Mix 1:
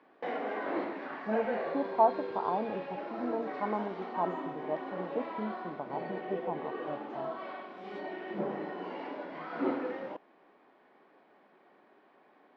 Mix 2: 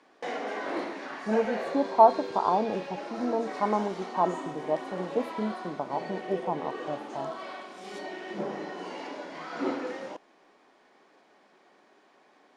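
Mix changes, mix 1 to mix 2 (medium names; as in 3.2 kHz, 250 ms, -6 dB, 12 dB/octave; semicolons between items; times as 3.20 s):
speech +5.5 dB; master: remove distance through air 380 m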